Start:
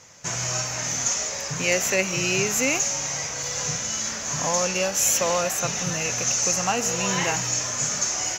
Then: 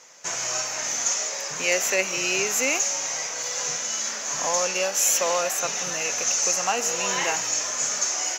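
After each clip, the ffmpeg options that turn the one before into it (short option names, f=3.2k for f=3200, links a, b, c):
-af "highpass=360"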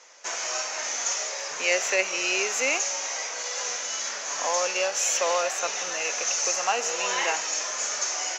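-filter_complex "[0:a]acrossover=split=310 7100:gain=0.0794 1 0.0708[a][b][c];[a][b][c]amix=inputs=3:normalize=0"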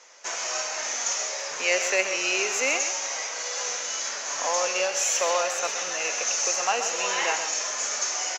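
-af "aecho=1:1:130:0.335"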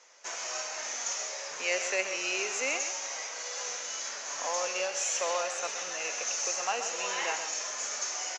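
-af "aresample=22050,aresample=44100,volume=-6.5dB"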